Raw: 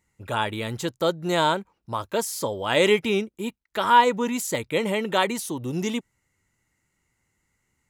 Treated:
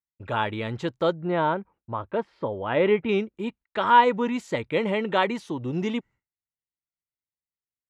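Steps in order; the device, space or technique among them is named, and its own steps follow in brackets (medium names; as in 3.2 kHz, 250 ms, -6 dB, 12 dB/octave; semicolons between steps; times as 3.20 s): hearing-loss simulation (low-pass 2.9 kHz 12 dB/octave; expander -45 dBFS); 1.13–3.09 s: distance through air 470 m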